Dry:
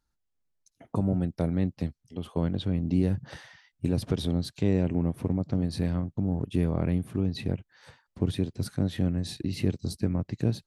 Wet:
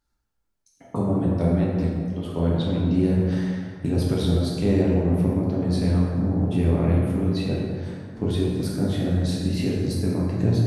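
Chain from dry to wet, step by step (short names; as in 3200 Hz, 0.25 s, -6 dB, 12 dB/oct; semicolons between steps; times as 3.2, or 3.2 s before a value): plate-style reverb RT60 2.2 s, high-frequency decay 0.5×, DRR -5.5 dB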